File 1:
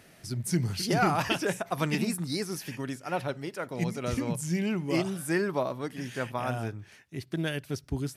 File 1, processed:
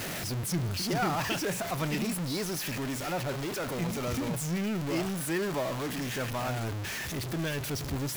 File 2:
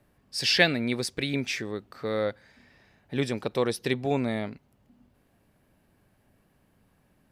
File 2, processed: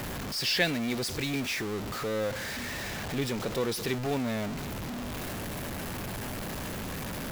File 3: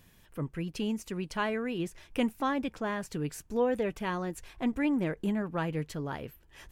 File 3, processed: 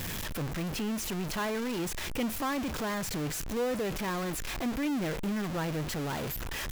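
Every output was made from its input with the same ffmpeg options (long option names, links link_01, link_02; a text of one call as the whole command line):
ffmpeg -i in.wav -af "aeval=exprs='val(0)+0.5*0.075*sgn(val(0))':channel_layout=same,equalizer=frequency=9100:width=7.5:gain=-5,volume=-7.5dB" out.wav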